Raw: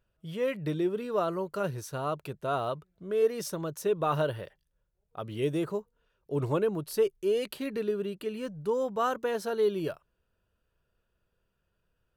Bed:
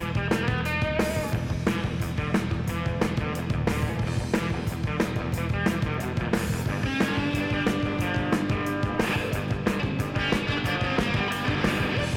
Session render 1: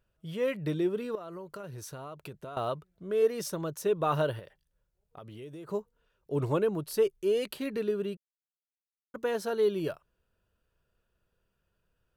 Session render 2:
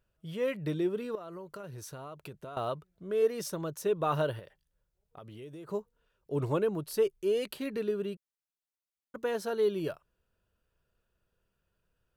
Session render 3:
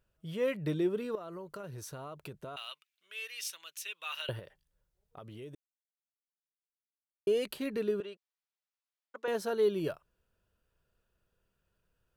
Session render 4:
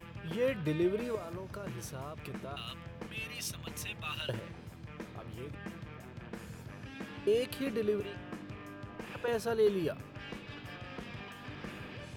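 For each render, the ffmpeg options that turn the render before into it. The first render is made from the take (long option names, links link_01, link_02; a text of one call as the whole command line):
ffmpeg -i in.wav -filter_complex "[0:a]asettb=1/sr,asplit=3[link_01][link_02][link_03];[link_01]atrim=end=1.154[link_04];[link_02]atrim=start=1.15:end=2.57,asetpts=PTS-STARTPTS,afade=type=in:duration=0.004:curve=qsin,afade=type=out:start_time=1.416:duration=0.004:curve=qsin,acompressor=threshold=-38dB:ratio=12:attack=3.2:release=140:knee=1:detection=peak[link_05];[link_03]atrim=start=2.566[link_06];[link_04][link_05]acrossfade=duration=0.004:curve1=hsin:curve2=qsin[link_07];[link_07][link_06]acrossfade=duration=0.004:curve1=qsin:curve2=hsin,asettb=1/sr,asplit=3[link_08][link_09][link_10];[link_08]atrim=end=4.394[link_11];[link_09]atrim=start=4.39:end=5.69,asetpts=PTS-STARTPTS,afade=type=in:duration=0.004:curve=qsin,afade=type=out:start_time=1.296:duration=0.004:curve=qsin,acompressor=threshold=-44dB:ratio=4:attack=3.2:release=140:knee=1:detection=peak[link_12];[link_10]atrim=start=5.686[link_13];[link_11][link_12]acrossfade=duration=0.004:curve1=hsin:curve2=qsin[link_14];[link_14][link_13]acrossfade=duration=0.004:curve1=qsin:curve2=hsin,asplit=3[link_15][link_16][link_17];[link_15]atrim=end=8.17,asetpts=PTS-STARTPTS,afade=type=out:start_time=8.166:duration=0.004:curve=hsin[link_18];[link_16]atrim=start=8.17:end=9.14,asetpts=PTS-STARTPTS,volume=0[link_19];[link_17]atrim=start=9.14,asetpts=PTS-STARTPTS,afade=type=in:duration=0.004:curve=hsin[link_20];[link_18][link_19][link_20]concat=n=3:v=0:a=1" out.wav
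ffmpeg -i in.wav -af "volume=-1.5dB" out.wav
ffmpeg -i in.wav -filter_complex "[0:a]asettb=1/sr,asplit=3[link_01][link_02][link_03];[link_01]atrim=end=2.564[link_04];[link_02]atrim=start=2.56:end=4.29,asetpts=PTS-STARTPTS,afade=type=in:duration=0.004:curve=qsin,afade=type=out:start_time=1.726:duration=0.004:curve=qsin,highpass=frequency=2600:width_type=q:width=3.1[link_05];[link_03]atrim=start=4.286[link_06];[link_04][link_05]acrossfade=duration=0.004:curve1=hsin:curve2=qsin[link_07];[link_07][link_06]acrossfade=duration=0.004:curve1=qsin:curve2=hsin,asettb=1/sr,asplit=3[link_08][link_09][link_10];[link_08]atrim=end=8.004[link_11];[link_09]atrim=start=8:end=9.28,asetpts=PTS-STARTPTS,afade=type=in:duration=0.004:curve=qsin,afade=type=out:start_time=1.276:duration=0.004:curve=qsin,highpass=560,lowpass=5300[link_12];[link_10]atrim=start=9.276[link_13];[link_11][link_12]acrossfade=duration=0.004:curve1=hsin:curve2=qsin[link_14];[link_14][link_13]acrossfade=duration=0.004:curve1=qsin:curve2=hsin,asplit=3[link_15][link_16][link_17];[link_15]atrim=end=5.55,asetpts=PTS-STARTPTS,afade=type=out:start_time=5.546:duration=0.004:curve=hsin[link_18];[link_16]atrim=start=5.55:end=7.27,asetpts=PTS-STARTPTS,volume=0[link_19];[link_17]atrim=start=7.27,asetpts=PTS-STARTPTS,afade=type=in:duration=0.004:curve=hsin[link_20];[link_18][link_19][link_20]concat=n=3:v=0:a=1" out.wav
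ffmpeg -i in.wav -i bed.wav -filter_complex "[1:a]volume=-19.5dB[link_01];[0:a][link_01]amix=inputs=2:normalize=0" out.wav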